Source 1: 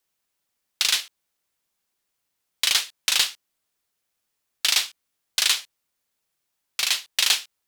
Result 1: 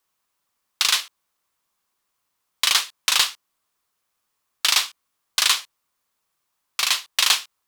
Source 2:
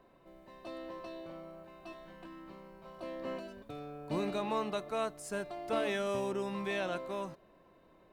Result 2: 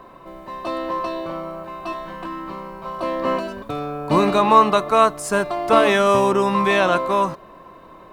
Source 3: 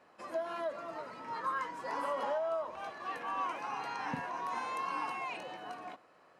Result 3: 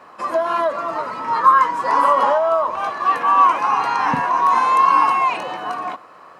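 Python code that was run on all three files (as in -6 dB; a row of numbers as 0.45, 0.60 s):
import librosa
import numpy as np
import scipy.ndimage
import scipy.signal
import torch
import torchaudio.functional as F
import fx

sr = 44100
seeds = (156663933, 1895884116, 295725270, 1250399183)

y = fx.peak_eq(x, sr, hz=1100.0, db=9.5, octaves=0.57)
y = librosa.util.normalize(y) * 10.0 ** (-2 / 20.0)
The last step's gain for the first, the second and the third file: +1.5, +16.5, +15.0 dB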